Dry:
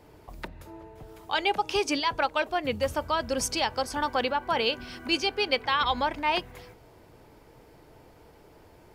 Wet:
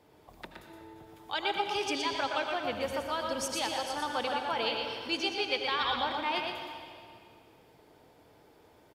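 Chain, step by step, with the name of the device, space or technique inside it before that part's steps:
PA in a hall (high-pass filter 140 Hz 6 dB per octave; parametric band 3,500 Hz +6 dB 0.21 octaves; single-tap delay 119 ms −5 dB; convolution reverb RT60 2.1 s, pre-delay 72 ms, DRR 5 dB)
level −7 dB

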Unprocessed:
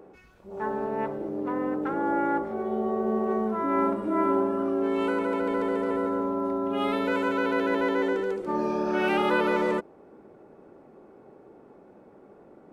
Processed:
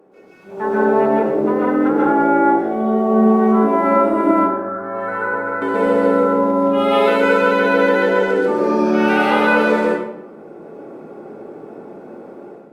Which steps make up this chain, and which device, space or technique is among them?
0:04.31–0:05.62: drawn EQ curve 110 Hz 0 dB, 240 Hz −18 dB, 1,700 Hz 0 dB, 2,900 Hz −26 dB, 5,300 Hz −18 dB
far-field microphone of a smart speaker (convolution reverb RT60 0.85 s, pre-delay 118 ms, DRR −5.5 dB; high-pass filter 140 Hz 24 dB per octave; automatic gain control gain up to 10.5 dB; level −1.5 dB; Opus 48 kbit/s 48,000 Hz)

